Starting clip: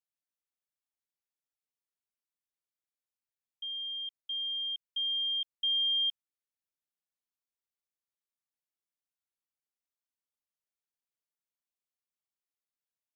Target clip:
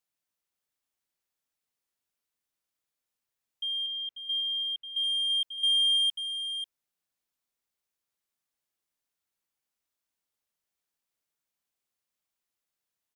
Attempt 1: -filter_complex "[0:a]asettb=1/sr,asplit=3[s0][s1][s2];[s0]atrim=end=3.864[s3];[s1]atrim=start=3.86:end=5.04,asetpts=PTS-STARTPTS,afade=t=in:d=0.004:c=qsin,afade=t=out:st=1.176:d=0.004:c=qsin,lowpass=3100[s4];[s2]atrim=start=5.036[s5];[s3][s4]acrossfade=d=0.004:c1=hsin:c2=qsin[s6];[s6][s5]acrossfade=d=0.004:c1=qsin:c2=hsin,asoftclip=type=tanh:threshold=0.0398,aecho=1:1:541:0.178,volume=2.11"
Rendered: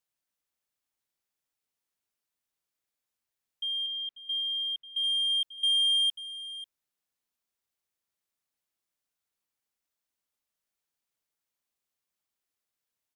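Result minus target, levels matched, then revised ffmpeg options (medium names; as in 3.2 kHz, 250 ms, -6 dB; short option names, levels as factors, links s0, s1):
echo-to-direct -6 dB
-filter_complex "[0:a]asettb=1/sr,asplit=3[s0][s1][s2];[s0]atrim=end=3.864[s3];[s1]atrim=start=3.86:end=5.04,asetpts=PTS-STARTPTS,afade=t=in:d=0.004:c=qsin,afade=t=out:st=1.176:d=0.004:c=qsin,lowpass=3100[s4];[s2]atrim=start=5.036[s5];[s3][s4]acrossfade=d=0.004:c1=hsin:c2=qsin[s6];[s6][s5]acrossfade=d=0.004:c1=qsin:c2=hsin,asoftclip=type=tanh:threshold=0.0398,aecho=1:1:541:0.355,volume=2.11"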